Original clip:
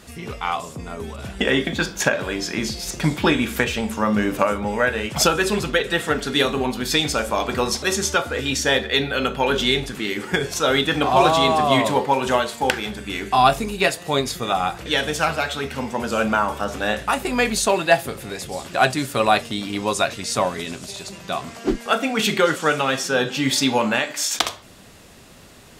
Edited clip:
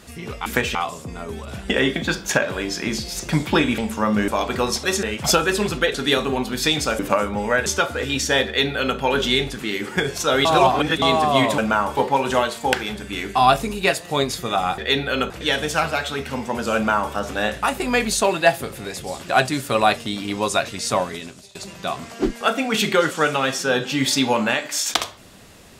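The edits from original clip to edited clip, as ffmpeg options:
-filter_complex "[0:a]asplit=16[a][b][c][d][e][f][g][h][i][j][k][l][m][n][o][p];[a]atrim=end=0.462[q];[b]atrim=start=3.488:end=3.782[r];[c]atrim=start=0.458:end=3.492[s];[d]atrim=start=3.778:end=4.282[t];[e]atrim=start=7.268:end=8.022[u];[f]atrim=start=4.948:end=5.862[v];[g]atrim=start=6.218:end=7.272[w];[h]atrim=start=4.278:end=4.952[x];[i]atrim=start=8.018:end=10.812[y];[j]atrim=start=10.808:end=11.382,asetpts=PTS-STARTPTS,areverse[z];[k]atrim=start=11.378:end=11.942[aa];[l]atrim=start=16.198:end=16.592[ab];[m]atrim=start=11.938:end=14.752[ac];[n]atrim=start=8.818:end=9.342[ad];[o]atrim=start=14.748:end=21,asetpts=PTS-STARTPTS,afade=t=out:st=5.702:d=0.55:silence=0.0944061[ae];[p]atrim=start=21,asetpts=PTS-STARTPTS,afade=t=in:d=0.004:c=hsin:silence=0.0944061[af];[q][r]acrossfade=d=0.004:c1=hsin:c2=hsin[ag];[ag][s]acrossfade=d=0.004:c1=hsin:c2=hsin[ah];[ah][t]acrossfade=d=0.004:c1=hsin:c2=hsin[ai];[ai][u]acrossfade=d=0.004:c1=hsin:c2=hsin[aj];[aj][v]acrossfade=d=0.004:c1=hsin:c2=hsin[ak];[ak][w]acrossfade=d=0.004:c1=hsin:c2=hsin[al];[al][x]acrossfade=d=0.004:c1=hsin:c2=hsin[am];[am][y]acrossfade=d=0.004:c1=hsin:c2=hsin[an];[an][z]acrossfade=d=0.004:c1=hsin:c2=hsin[ao];[ao][aa]acrossfade=d=0.004:c1=hsin:c2=hsin[ap];[ap][ab]acrossfade=d=0.004:c1=hsin:c2=hsin[aq];[aq][ac]acrossfade=d=0.004:c1=hsin:c2=hsin[ar];[ar][ad]acrossfade=d=0.004:c1=hsin:c2=hsin[as];[ae][af]concat=n=2:v=0:a=1[at];[as][at]acrossfade=d=0.004:c1=hsin:c2=hsin"

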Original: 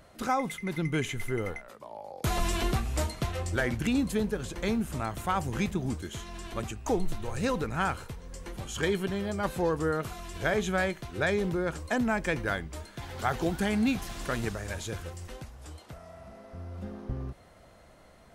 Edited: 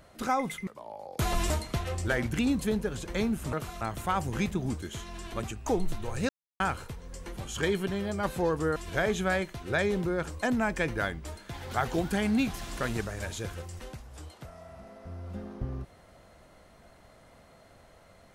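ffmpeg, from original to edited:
-filter_complex "[0:a]asplit=8[a][b][c][d][e][f][g][h];[a]atrim=end=0.672[i];[b]atrim=start=1.718:end=2.552[j];[c]atrim=start=2.978:end=5.012[k];[d]atrim=start=9.958:end=10.242[l];[e]atrim=start=5.008:end=7.49,asetpts=PTS-STARTPTS,afade=t=out:st=2.478:d=0.004:c=hsin[m];[f]atrim=start=7.49:end=7.8,asetpts=PTS-STARTPTS,volume=0[n];[g]atrim=start=7.8:end=9.962,asetpts=PTS-STARTPTS,afade=t=in:d=0.004:c=hsin[o];[h]atrim=start=10.238[p];[i][j]acrossfade=d=0.004:c1=hsin:c2=hsin[q];[q][k]acrossfade=d=0.004:c1=hsin:c2=hsin[r];[r][l]acrossfade=d=0.004:c1=hsin:c2=hsin[s];[m][n][o]concat=n=3:v=0:a=1[t];[s][t]acrossfade=d=0.004:c1=hsin:c2=hsin[u];[u][p]acrossfade=d=0.004:c1=hsin:c2=hsin"

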